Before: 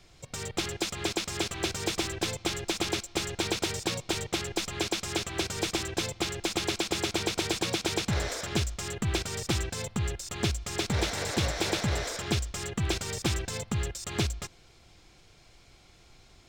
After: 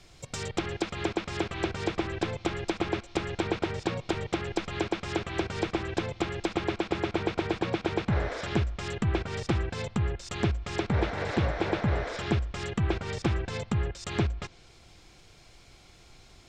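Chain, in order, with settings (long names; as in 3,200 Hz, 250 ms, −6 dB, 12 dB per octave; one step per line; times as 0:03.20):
treble cut that deepens with the level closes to 1,800 Hz, closed at −27 dBFS
level +2.5 dB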